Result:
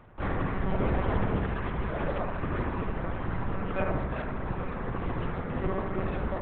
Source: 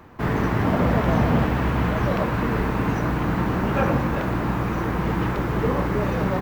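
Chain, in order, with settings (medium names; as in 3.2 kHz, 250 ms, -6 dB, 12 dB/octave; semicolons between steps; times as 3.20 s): reverb removal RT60 1.5 s; monotone LPC vocoder at 8 kHz 190 Hz; on a send: bucket-brigade echo 73 ms, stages 1024, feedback 62%, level -5 dB; on the sum: trim -6.5 dB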